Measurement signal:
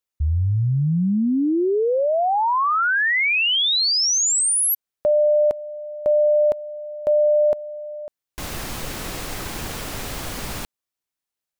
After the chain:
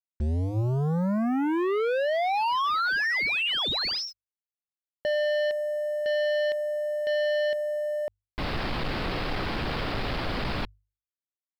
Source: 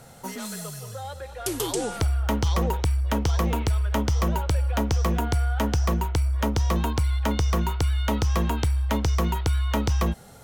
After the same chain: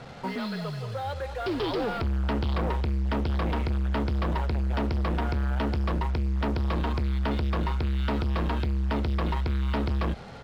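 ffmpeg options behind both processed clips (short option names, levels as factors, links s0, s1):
-af "aresample=11025,asoftclip=type=tanh:threshold=0.0335,aresample=44100,acrusher=bits=7:mix=0:aa=0.5,lowpass=f=3600:p=1,bandreject=f=50:t=h:w=6,bandreject=f=100:t=h:w=6,volume=1.88"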